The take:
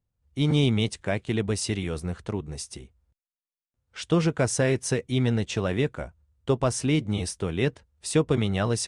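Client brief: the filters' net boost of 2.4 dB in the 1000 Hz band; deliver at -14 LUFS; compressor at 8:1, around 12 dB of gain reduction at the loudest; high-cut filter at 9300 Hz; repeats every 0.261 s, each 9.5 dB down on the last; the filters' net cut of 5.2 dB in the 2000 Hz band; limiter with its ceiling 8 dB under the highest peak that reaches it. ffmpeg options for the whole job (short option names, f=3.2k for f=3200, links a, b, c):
-af "lowpass=9.3k,equalizer=f=1k:t=o:g=5.5,equalizer=f=2k:t=o:g=-8.5,acompressor=threshold=-30dB:ratio=8,alimiter=level_in=3dB:limit=-24dB:level=0:latency=1,volume=-3dB,aecho=1:1:261|522|783|1044:0.335|0.111|0.0365|0.012,volume=23.5dB"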